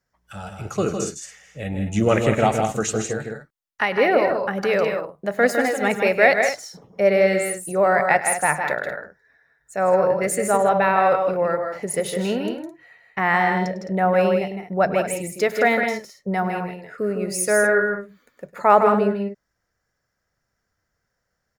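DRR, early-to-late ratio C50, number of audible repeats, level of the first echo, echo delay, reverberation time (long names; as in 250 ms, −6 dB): no reverb audible, no reverb audible, 3, −16.5 dB, 102 ms, no reverb audible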